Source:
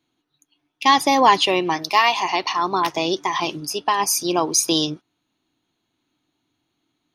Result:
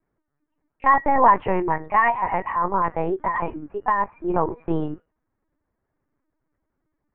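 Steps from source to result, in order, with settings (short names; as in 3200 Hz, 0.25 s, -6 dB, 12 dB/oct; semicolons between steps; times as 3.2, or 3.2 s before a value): elliptic low-pass 1900 Hz, stop band 60 dB; resonator 480 Hz, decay 0.32 s, harmonics all, mix 60%; LPC vocoder at 8 kHz pitch kept; gain +7 dB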